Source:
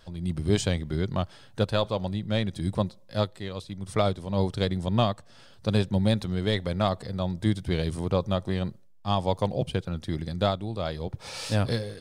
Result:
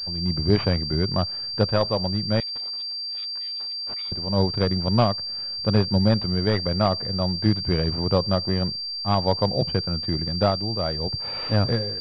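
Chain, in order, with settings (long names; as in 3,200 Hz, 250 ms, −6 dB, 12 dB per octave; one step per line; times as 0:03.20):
0:02.40–0:04.12: inverse Chebyshev high-pass filter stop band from 620 Hz, stop band 70 dB
switching amplifier with a slow clock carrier 4,700 Hz
level +4 dB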